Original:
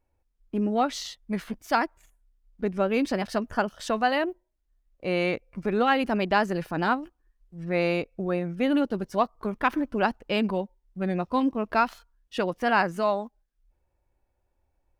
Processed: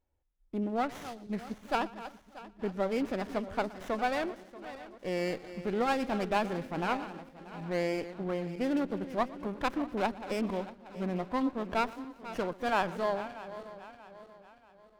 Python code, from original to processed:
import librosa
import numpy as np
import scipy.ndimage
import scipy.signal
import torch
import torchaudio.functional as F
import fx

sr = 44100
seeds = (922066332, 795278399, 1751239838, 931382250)

y = fx.reverse_delay_fb(x, sr, ms=317, feedback_pct=63, wet_db=-13.5)
y = fx.echo_feedback(y, sr, ms=119, feedback_pct=46, wet_db=-20.5)
y = fx.running_max(y, sr, window=9)
y = y * librosa.db_to_amplitude(-6.0)